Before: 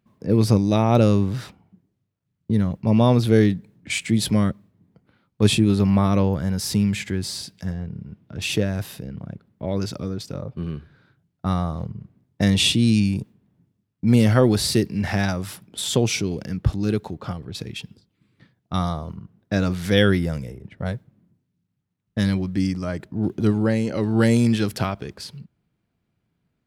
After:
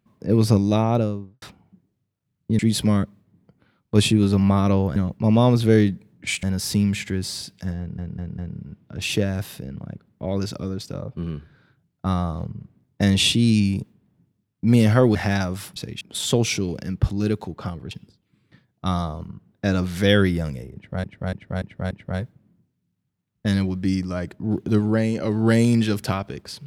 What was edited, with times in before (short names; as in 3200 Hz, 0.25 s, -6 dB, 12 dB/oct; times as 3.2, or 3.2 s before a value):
0.66–1.42 studio fade out
2.59–4.06 move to 6.43
7.78 stutter 0.20 s, 4 plays
14.55–15.03 cut
17.54–17.79 move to 15.64
20.63–20.92 loop, 5 plays